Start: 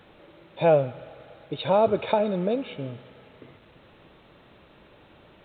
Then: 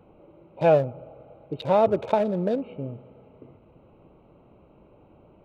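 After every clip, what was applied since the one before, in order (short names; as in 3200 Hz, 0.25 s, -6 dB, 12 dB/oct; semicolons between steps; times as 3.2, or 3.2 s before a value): Wiener smoothing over 25 samples; gain +1 dB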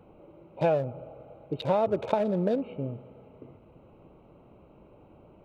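compressor 6:1, threshold -21 dBFS, peak gain reduction 8 dB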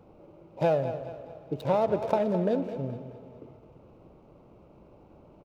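median filter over 15 samples; feedback echo 0.213 s, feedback 43%, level -12 dB; spring tank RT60 2.4 s, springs 43 ms, chirp 40 ms, DRR 14.5 dB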